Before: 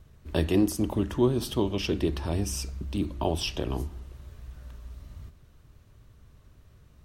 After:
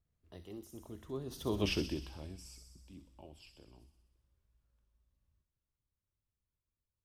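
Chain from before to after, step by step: Doppler pass-by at 1.66 s, 25 m/s, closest 2.1 m; feedback echo behind a high-pass 63 ms, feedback 70%, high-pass 4.8 kHz, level -3.5 dB; trim -2 dB

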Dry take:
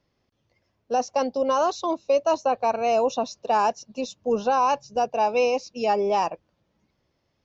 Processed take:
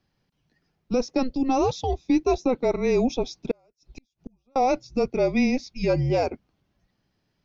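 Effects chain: frequency shift -260 Hz; 3.51–4.56 s: inverted gate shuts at -26 dBFS, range -41 dB

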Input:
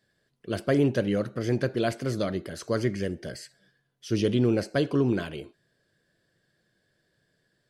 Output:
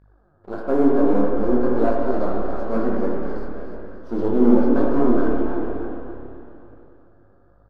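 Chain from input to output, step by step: partial rectifier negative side -12 dB; graphic EQ 125/250/500/1000/2000/4000/8000 Hz -9/+8/+6/+10/-5/+11/-7 dB; harmonic-percussive split percussive -11 dB; resonant high shelf 2 kHz -11 dB, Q 3; waveshaping leveller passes 1; mains buzz 50 Hz, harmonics 33, -55 dBFS -6 dB/octave; on a send: frequency-shifting echo 290 ms, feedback 41%, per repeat +35 Hz, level -9 dB; on the sum: spring tank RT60 2.8 s, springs 49/57 ms, chirp 45 ms, DRR 0 dB; detune thickener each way 36 cents; trim +1.5 dB

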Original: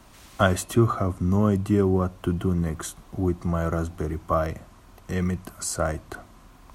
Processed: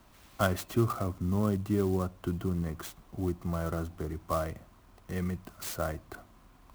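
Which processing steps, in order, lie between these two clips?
sampling jitter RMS 0.03 ms; trim -7.5 dB

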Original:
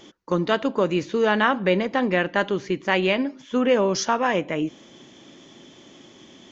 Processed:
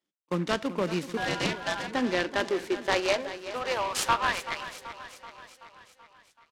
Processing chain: gate -36 dBFS, range -34 dB; tilt EQ +2 dB/octave; 1.17–1.88 s: ring modulator 1.2 kHz; high-pass sweep 170 Hz -> 1.7 kHz, 1.59–4.78 s; feedback delay 381 ms, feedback 59%, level -13 dB; delay time shaken by noise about 1.5 kHz, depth 0.046 ms; trim -7 dB

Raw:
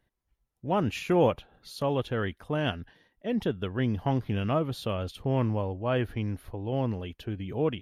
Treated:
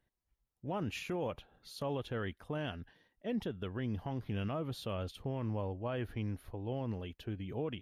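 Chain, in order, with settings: peak limiter -22 dBFS, peak gain reduction 9.5 dB; trim -6 dB

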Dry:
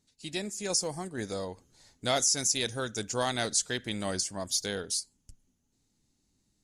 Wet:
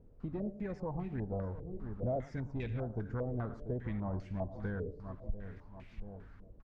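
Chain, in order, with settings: tilt EQ -4.5 dB/octave; de-hum 147.8 Hz, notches 28; Chebyshev shaper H 6 -23 dB, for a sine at -11 dBFS; feedback delay 686 ms, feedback 38%, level -16.5 dB; word length cut 10-bit, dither triangular; compression 4:1, threshold -38 dBFS, peak gain reduction 15.5 dB; bass shelf 170 Hz +7.5 dB; delay 113 ms -15.5 dB; step-sequenced low-pass 5 Hz 480–2400 Hz; trim -3 dB

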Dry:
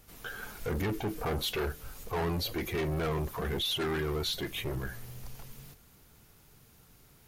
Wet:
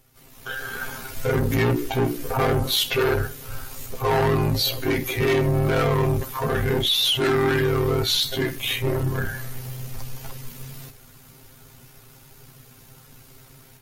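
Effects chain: granular stretch 1.9×, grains 32 ms; level rider gain up to 12 dB

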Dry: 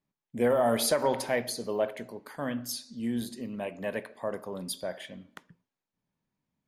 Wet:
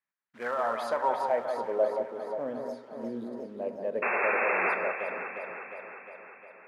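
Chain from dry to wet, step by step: short-mantissa float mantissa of 2-bit; band-pass sweep 1.7 kHz -> 480 Hz, 0.15–1.95 s; painted sound noise, 4.02–4.75 s, 340–2700 Hz -33 dBFS; echo whose repeats swap between lows and highs 178 ms, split 2.1 kHz, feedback 79%, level -5.5 dB; trim +4.5 dB

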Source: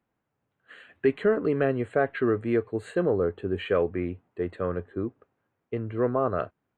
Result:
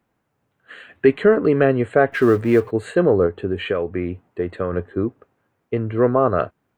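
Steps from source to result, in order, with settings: 2.12–2.71 s: companding laws mixed up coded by mu; 3.26–4.73 s: compression 6:1, threshold -27 dBFS, peak gain reduction 8 dB; trim +8.5 dB

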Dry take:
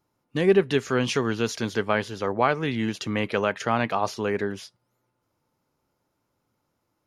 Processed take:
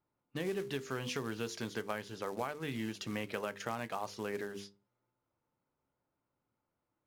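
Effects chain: hum notches 50/100/150/200/250/300/350/400/450/500 Hz; short-mantissa float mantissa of 2-bit; compression, threshold -24 dBFS, peak gain reduction 9 dB; feedback comb 67 Hz, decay 0.19 s, harmonics all, mix 40%; level-controlled noise filter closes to 2.7 kHz, open at -31.5 dBFS; trim -7 dB

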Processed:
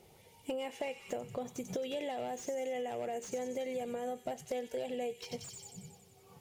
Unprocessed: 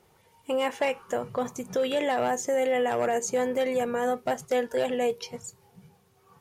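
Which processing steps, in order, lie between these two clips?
feedback echo behind a high-pass 92 ms, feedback 62%, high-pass 3 kHz, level -8 dB; compression 6:1, threshold -38 dBFS, peak gain reduction 14.5 dB; high-order bell 1.3 kHz -9 dB 1.1 oct; slew-rate limiter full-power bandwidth 26 Hz; trim +2 dB

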